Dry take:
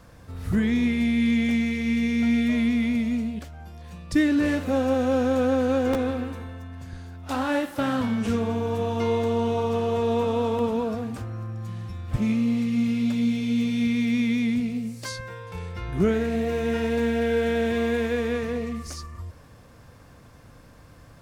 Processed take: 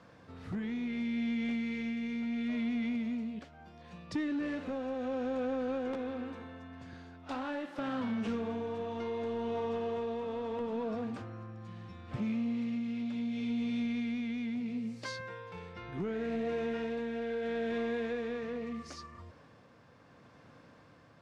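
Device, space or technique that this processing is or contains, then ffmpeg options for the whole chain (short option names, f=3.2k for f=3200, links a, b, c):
AM radio: -af "highpass=160,lowpass=4.3k,acompressor=threshold=-25dB:ratio=6,asoftclip=type=tanh:threshold=-22dB,tremolo=f=0.73:d=0.3,volume=-4dB"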